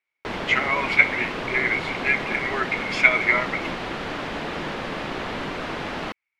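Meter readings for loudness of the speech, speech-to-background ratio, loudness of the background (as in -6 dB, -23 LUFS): -21.5 LUFS, 8.5 dB, -30.0 LUFS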